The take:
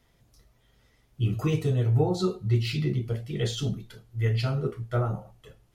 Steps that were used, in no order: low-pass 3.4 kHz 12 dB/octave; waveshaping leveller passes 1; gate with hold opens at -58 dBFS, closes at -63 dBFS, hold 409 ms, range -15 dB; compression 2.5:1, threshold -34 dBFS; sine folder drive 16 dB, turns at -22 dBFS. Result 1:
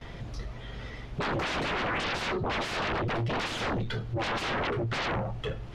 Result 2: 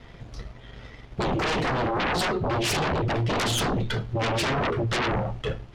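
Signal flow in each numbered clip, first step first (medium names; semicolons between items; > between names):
gate with hold > sine folder > compression > waveshaping leveller > low-pass; compression > waveshaping leveller > low-pass > sine folder > gate with hold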